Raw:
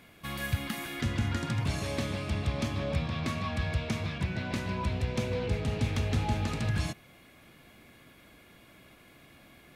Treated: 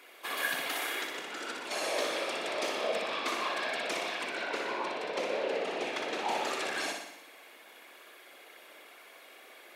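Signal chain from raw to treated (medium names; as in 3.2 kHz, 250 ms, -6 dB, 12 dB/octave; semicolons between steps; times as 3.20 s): 0.90–1.71 s: compression, threshold -33 dBFS, peak gain reduction 8.5 dB; 4.44–6.28 s: low-pass 3.4 kHz 6 dB/octave; whisper effect; high-pass 410 Hz 24 dB/octave; flutter echo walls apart 10.4 m, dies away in 0.83 s; trim +3 dB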